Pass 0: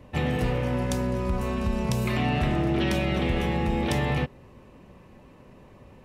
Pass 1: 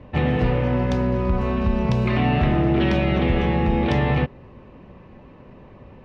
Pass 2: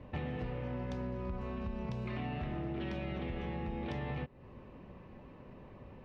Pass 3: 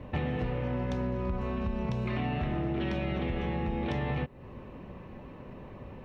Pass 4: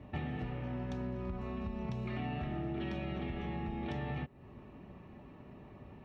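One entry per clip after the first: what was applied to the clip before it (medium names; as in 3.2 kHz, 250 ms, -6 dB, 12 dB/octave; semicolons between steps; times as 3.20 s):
distance through air 230 m; trim +6 dB
compression 4:1, threshold -30 dBFS, peak gain reduction 13 dB; trim -7.5 dB
band-stop 4.8 kHz, Q 14; trim +7 dB
comb of notches 510 Hz; trim -6 dB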